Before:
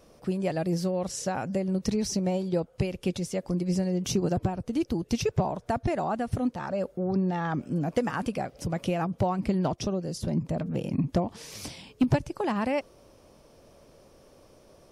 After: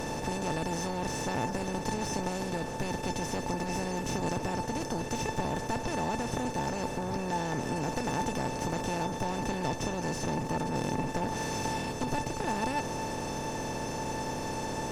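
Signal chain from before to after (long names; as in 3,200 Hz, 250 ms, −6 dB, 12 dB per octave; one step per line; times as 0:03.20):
compressor on every frequency bin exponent 0.2
asymmetric clip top −18.5 dBFS
tuned comb filter 890 Hz, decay 0.16 s, harmonics all, mix 90%
level +3.5 dB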